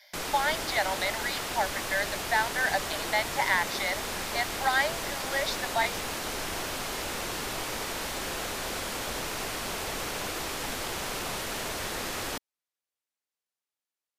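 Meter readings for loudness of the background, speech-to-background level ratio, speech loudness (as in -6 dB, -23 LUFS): -32.5 LUFS, 2.5 dB, -30.0 LUFS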